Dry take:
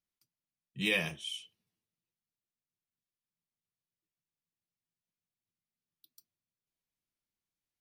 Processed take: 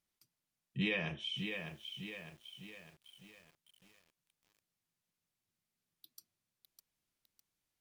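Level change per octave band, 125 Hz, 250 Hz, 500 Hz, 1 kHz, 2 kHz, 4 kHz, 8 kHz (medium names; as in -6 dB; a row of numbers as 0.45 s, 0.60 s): +2.5 dB, +1.0 dB, -2.5 dB, -1.5 dB, -4.0 dB, -2.5 dB, -10.5 dB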